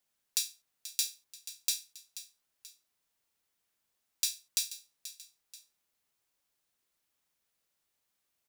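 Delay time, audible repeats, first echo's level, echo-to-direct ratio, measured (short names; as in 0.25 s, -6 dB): 0.483 s, 2, -14.0 dB, -13.0 dB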